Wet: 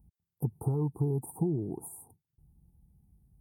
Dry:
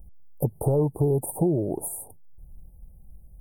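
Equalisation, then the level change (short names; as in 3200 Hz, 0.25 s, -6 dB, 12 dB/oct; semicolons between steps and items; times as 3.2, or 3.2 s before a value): HPF 95 Hz 12 dB/oct; high shelf 8200 Hz -12 dB; fixed phaser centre 1400 Hz, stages 4; -3.5 dB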